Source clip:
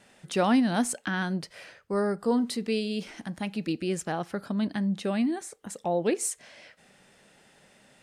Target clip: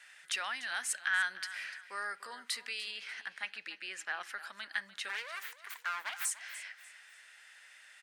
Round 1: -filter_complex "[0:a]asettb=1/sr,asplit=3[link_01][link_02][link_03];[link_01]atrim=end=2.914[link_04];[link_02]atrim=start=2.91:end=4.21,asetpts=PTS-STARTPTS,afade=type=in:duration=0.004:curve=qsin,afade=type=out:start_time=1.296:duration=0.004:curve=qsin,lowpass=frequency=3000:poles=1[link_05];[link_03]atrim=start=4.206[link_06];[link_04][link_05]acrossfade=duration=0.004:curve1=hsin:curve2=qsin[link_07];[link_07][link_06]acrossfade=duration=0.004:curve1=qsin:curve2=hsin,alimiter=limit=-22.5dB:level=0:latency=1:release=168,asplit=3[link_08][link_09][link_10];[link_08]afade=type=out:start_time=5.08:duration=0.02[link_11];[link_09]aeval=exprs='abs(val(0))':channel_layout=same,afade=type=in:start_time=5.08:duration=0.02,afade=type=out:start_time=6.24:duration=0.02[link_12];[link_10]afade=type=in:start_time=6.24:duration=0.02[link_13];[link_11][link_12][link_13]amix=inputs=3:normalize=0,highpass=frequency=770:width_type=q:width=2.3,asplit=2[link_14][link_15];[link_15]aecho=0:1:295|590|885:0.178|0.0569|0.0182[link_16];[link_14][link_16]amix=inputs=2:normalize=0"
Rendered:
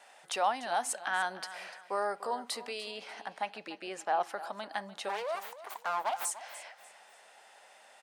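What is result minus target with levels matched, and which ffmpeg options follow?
1,000 Hz band +9.0 dB
-filter_complex "[0:a]asettb=1/sr,asplit=3[link_01][link_02][link_03];[link_01]atrim=end=2.914[link_04];[link_02]atrim=start=2.91:end=4.21,asetpts=PTS-STARTPTS,afade=type=in:duration=0.004:curve=qsin,afade=type=out:start_time=1.296:duration=0.004:curve=qsin,lowpass=frequency=3000:poles=1[link_05];[link_03]atrim=start=4.206[link_06];[link_04][link_05]acrossfade=duration=0.004:curve1=hsin:curve2=qsin[link_07];[link_07][link_06]acrossfade=duration=0.004:curve1=qsin:curve2=hsin,alimiter=limit=-22.5dB:level=0:latency=1:release=168,asplit=3[link_08][link_09][link_10];[link_08]afade=type=out:start_time=5.08:duration=0.02[link_11];[link_09]aeval=exprs='abs(val(0))':channel_layout=same,afade=type=in:start_time=5.08:duration=0.02,afade=type=out:start_time=6.24:duration=0.02[link_12];[link_10]afade=type=in:start_time=6.24:duration=0.02[link_13];[link_11][link_12][link_13]amix=inputs=3:normalize=0,highpass=frequency=1700:width_type=q:width=2.3,asplit=2[link_14][link_15];[link_15]aecho=0:1:295|590|885:0.178|0.0569|0.0182[link_16];[link_14][link_16]amix=inputs=2:normalize=0"

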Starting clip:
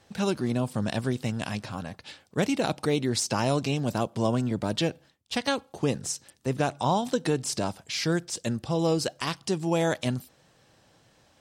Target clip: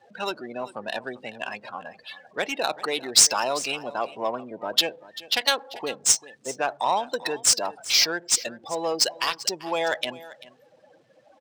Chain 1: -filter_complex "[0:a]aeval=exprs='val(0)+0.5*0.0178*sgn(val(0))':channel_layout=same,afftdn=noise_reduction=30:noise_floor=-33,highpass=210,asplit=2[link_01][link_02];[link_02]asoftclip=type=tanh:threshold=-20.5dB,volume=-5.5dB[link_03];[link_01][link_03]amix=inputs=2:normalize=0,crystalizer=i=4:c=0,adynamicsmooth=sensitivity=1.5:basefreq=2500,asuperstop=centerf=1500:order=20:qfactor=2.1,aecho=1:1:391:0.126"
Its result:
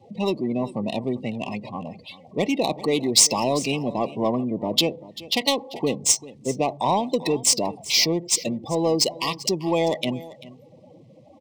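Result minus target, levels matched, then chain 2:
250 Hz band +12.0 dB; 2,000 Hz band −5.0 dB
-filter_complex "[0:a]aeval=exprs='val(0)+0.5*0.0178*sgn(val(0))':channel_layout=same,afftdn=noise_reduction=30:noise_floor=-33,highpass=660,asplit=2[link_01][link_02];[link_02]asoftclip=type=tanh:threshold=-20.5dB,volume=-5.5dB[link_03];[link_01][link_03]amix=inputs=2:normalize=0,crystalizer=i=4:c=0,adynamicsmooth=sensitivity=1.5:basefreq=2500,aecho=1:1:391:0.126"

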